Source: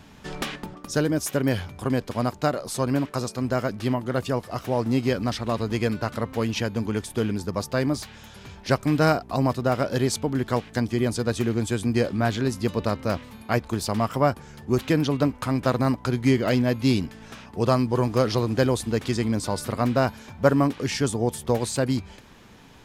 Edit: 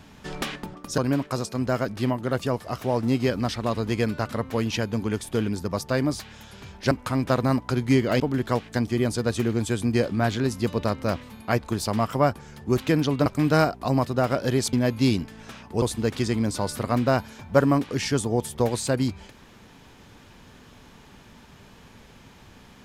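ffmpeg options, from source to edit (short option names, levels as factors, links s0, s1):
-filter_complex "[0:a]asplit=7[s0][s1][s2][s3][s4][s5][s6];[s0]atrim=end=0.982[s7];[s1]atrim=start=2.808:end=8.742[s8];[s2]atrim=start=15.268:end=16.562[s9];[s3]atrim=start=10.208:end=15.272[s10];[s4]atrim=start=8.738:end=10.212[s11];[s5]atrim=start=16.558:end=17.652[s12];[s6]atrim=start=18.708[s13];[s7][s8]acrossfade=d=0.004:c1=hsin:c2=hsin[s14];[s14][s9]acrossfade=d=0.004:c1=hsin:c2=hsin[s15];[s15][s10]acrossfade=d=0.004:c1=hsin:c2=hsin[s16];[s16][s11]acrossfade=d=0.004:c1=hsin:c2=hsin[s17];[s17][s12]acrossfade=d=0.004:c1=hsin:c2=hsin[s18];[s18][s13]acrossfade=d=0.004:c1=hsin:c2=hsin"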